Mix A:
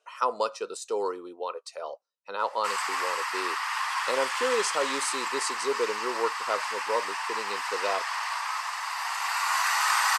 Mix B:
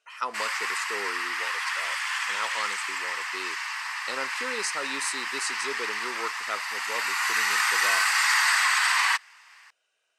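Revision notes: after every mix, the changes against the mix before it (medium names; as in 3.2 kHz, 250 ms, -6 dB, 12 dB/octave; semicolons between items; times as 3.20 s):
background: entry -2.30 s; master: add graphic EQ 500/1000/2000 Hz -10/-5/+6 dB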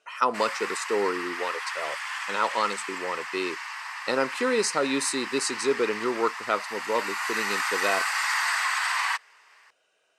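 speech +9.0 dB; master: add tilt shelf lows +6 dB, about 790 Hz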